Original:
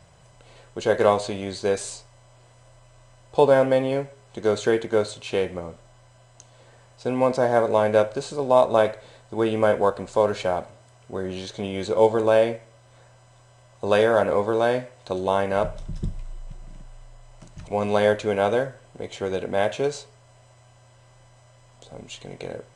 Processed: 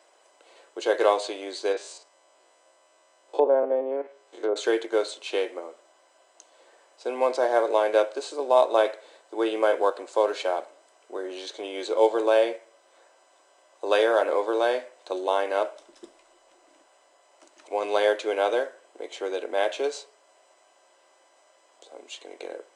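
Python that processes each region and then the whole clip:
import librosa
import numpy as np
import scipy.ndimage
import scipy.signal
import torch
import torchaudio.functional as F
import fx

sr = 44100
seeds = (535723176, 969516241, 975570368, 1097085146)

y = fx.chain(x, sr, fx.spec_steps(hold_ms=50),
    fx.env_lowpass_down(base_hz=820.0, full_db=-18.0), at=(1.72, 4.56))
y = scipy.signal.sosfilt(scipy.signal.ellip(4, 1.0, 50, 310.0, 'highpass', fs=sr, output='sos'), y)
y = fx.dynamic_eq(y, sr, hz=3600.0, q=1.2, threshold_db=-41.0, ratio=4.0, max_db=4)
y = F.gain(torch.from_numpy(y), -2.0).numpy()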